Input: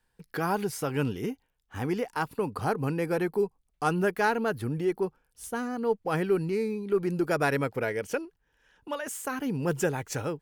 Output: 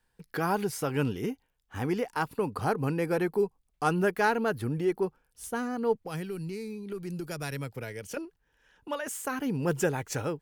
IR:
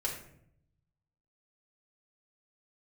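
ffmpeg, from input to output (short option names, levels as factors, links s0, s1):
-filter_complex "[0:a]asettb=1/sr,asplit=3[s0][s1][s2];[s0]atrim=end=5.954[s3];[s1]atrim=start=5.95:end=8.17,asetpts=PTS-STARTPTS,afade=t=in:d=0.004:c=qsin,afade=t=out:st=2.216:d=0.004:c=qsin,acrossover=split=160|3000[s4][s5][s6];[s5]acompressor=threshold=0.00891:ratio=3[s7];[s4][s7][s6]amix=inputs=3:normalize=0[s8];[s2]atrim=start=8.166[s9];[s3][s8]acrossfade=d=0.004:c1=hsin:c2=qsin[s10];[s10][s9]acrossfade=d=0.004:c1=qsin:c2=hsin"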